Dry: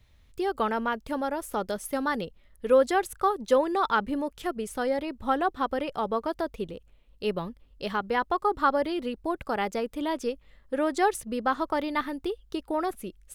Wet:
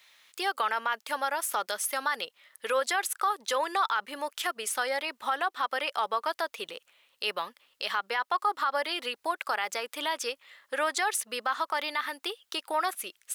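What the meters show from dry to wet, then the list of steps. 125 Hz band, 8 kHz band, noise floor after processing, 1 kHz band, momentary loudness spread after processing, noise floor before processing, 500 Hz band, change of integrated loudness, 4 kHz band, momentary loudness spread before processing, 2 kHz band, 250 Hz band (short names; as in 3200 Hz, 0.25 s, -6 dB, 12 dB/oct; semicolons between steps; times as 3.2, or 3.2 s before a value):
under -20 dB, +8.5 dB, -75 dBFS, -1.0 dB, 9 LU, -59 dBFS, -7.5 dB, -2.0 dB, +7.5 dB, 10 LU, +3.0 dB, -15.5 dB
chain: HPF 1200 Hz 12 dB/oct; in parallel at 0 dB: compressor, threshold -44 dBFS, peak gain reduction 21 dB; on the sum: limiter -24.5 dBFS, peak gain reduction 11 dB; gain +6.5 dB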